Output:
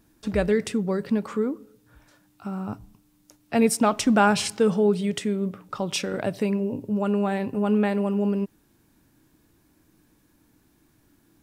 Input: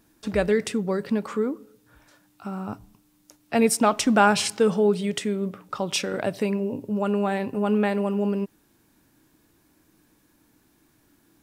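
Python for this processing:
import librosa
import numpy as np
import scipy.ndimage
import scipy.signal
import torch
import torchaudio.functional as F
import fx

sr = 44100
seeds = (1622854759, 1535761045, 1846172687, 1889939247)

y = fx.low_shelf(x, sr, hz=210.0, db=6.5)
y = F.gain(torch.from_numpy(y), -2.0).numpy()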